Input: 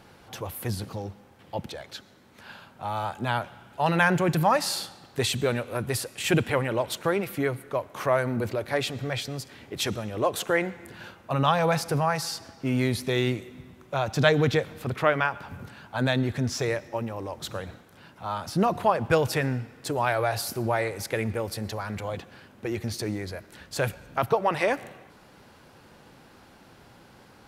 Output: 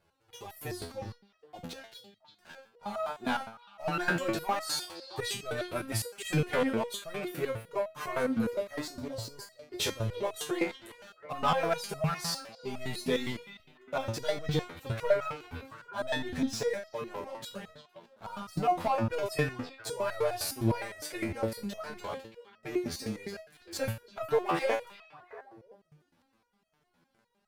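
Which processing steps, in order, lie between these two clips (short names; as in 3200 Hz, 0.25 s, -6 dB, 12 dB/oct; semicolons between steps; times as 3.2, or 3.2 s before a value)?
8.81–9.52 elliptic band-stop 1100–4300 Hz; sample leveller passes 3; flange 0.2 Hz, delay 1.9 ms, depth 3.6 ms, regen -37%; on a send: delay with a stepping band-pass 0.335 s, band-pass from 3300 Hz, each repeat -1.4 oct, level -11.5 dB; on the sum: stepped resonator 9.8 Hz 84–640 Hz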